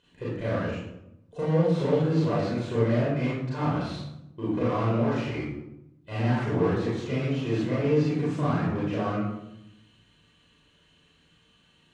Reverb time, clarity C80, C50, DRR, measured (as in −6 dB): 0.85 s, 3.5 dB, −0.5 dB, −8.5 dB